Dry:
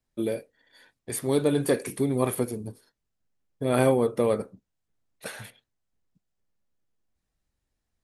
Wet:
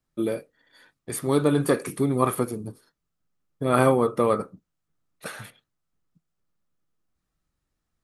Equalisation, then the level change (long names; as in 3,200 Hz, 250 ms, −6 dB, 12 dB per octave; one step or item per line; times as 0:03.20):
dynamic equaliser 1,100 Hz, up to +5 dB, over −39 dBFS, Q 1.5
thirty-one-band graphic EQ 160 Hz +8 dB, 315 Hz +4 dB, 1,250 Hz +9 dB
0.0 dB